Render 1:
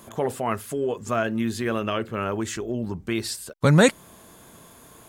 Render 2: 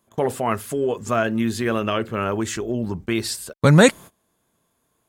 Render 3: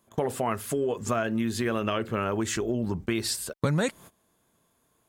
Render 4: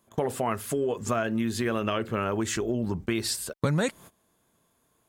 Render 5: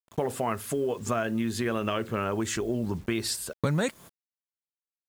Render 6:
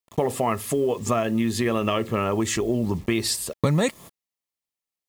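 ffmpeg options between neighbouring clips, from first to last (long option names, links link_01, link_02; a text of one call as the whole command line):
ffmpeg -i in.wav -af "agate=range=-24dB:threshold=-39dB:ratio=16:detection=peak,volume=3.5dB" out.wav
ffmpeg -i in.wav -af "acompressor=threshold=-24dB:ratio=5" out.wav
ffmpeg -i in.wav -af anull out.wav
ffmpeg -i in.wav -af "acrusher=bits=8:mix=0:aa=0.000001,volume=-1dB" out.wav
ffmpeg -i in.wav -af "asuperstop=centerf=1500:order=4:qfactor=5.4,volume=5.5dB" out.wav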